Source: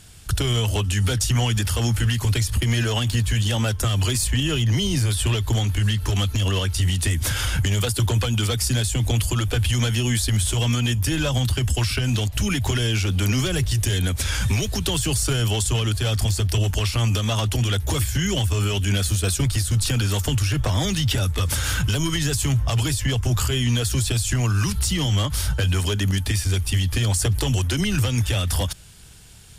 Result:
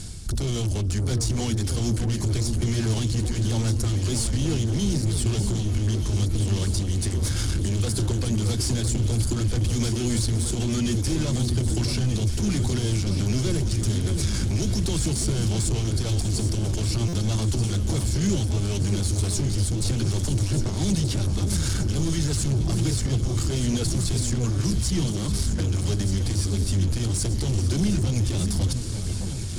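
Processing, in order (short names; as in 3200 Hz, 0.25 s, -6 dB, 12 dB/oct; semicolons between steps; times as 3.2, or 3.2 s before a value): notches 60/120/180 Hz; soft clip -28.5 dBFS, distortion -8 dB; tilt -2.5 dB/oct; reverse; upward compressor, threshold -25 dBFS; reverse; limiter -20 dBFS, peak gain reduction 5 dB; band shelf 6500 Hz +13 dB; small resonant body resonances 200/340/2200 Hz, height 7 dB, ringing for 35 ms; on a send: echo with dull and thin repeats by turns 0.615 s, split 1500 Hz, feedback 80%, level -7 dB; on the sum: stuck buffer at 17.08, samples 256, times 8; gain -1.5 dB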